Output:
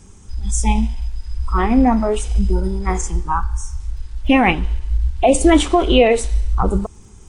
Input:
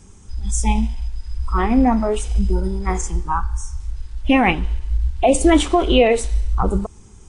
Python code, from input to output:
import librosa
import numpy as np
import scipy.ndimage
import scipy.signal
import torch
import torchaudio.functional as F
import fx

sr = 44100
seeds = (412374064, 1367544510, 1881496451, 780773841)

y = fx.dmg_crackle(x, sr, seeds[0], per_s=21.0, level_db=-45.0)
y = y * 10.0 ** (1.5 / 20.0)